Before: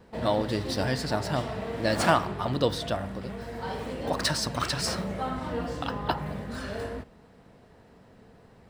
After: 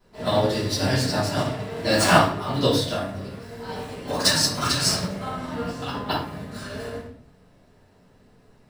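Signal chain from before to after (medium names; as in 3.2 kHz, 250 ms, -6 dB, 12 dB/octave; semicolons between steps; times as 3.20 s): treble shelf 3.2 kHz +9 dB; simulated room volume 110 m³, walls mixed, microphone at 3 m; upward expansion 1.5:1, over -28 dBFS; trim -4.5 dB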